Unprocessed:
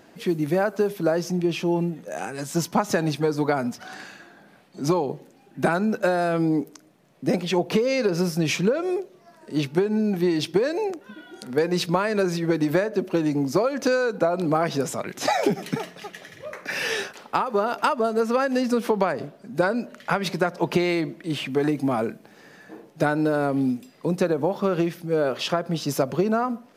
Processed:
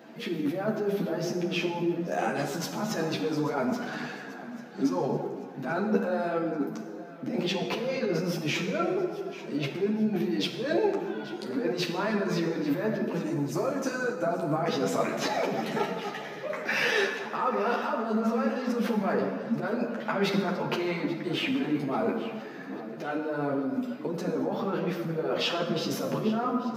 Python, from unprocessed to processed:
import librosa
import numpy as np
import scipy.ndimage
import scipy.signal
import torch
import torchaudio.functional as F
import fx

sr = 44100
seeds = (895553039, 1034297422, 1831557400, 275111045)

y = fx.graphic_eq(x, sr, hz=(250, 500, 1000, 2000, 4000, 8000), db=(-8, -9, -6, -6, -12, 8), at=(13.12, 14.56))
y = fx.over_compress(y, sr, threshold_db=-27.0, ratio=-1.0)
y = scipy.signal.sosfilt(scipy.signal.butter(4, 150.0, 'highpass', fs=sr, output='sos'), y)
y = fx.peak_eq(y, sr, hz=9300.0, db=-13.5, octaves=1.2)
y = fx.echo_feedback(y, sr, ms=837, feedback_pct=48, wet_db=-17.0)
y = fx.rev_plate(y, sr, seeds[0], rt60_s=1.8, hf_ratio=0.55, predelay_ms=0, drr_db=3.0)
y = fx.ensemble(y, sr)
y = F.gain(torch.from_numpy(y), 1.0).numpy()